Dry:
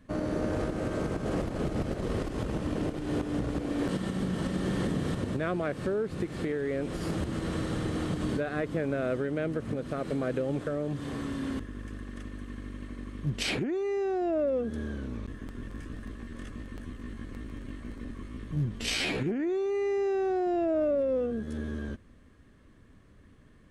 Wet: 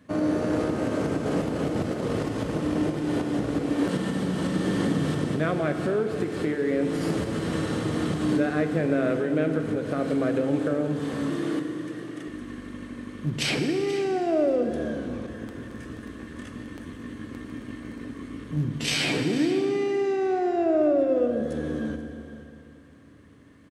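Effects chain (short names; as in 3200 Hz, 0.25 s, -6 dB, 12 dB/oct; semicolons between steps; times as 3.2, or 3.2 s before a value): HPF 120 Hz 12 dB/oct; 11.3–12.28 frequency shift +68 Hz; 13.93–14.56 high shelf 7000 Hz +12 dB; echo 0.482 s -15.5 dB; FDN reverb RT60 2.8 s, high-frequency decay 0.85×, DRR 5.5 dB; gain +4 dB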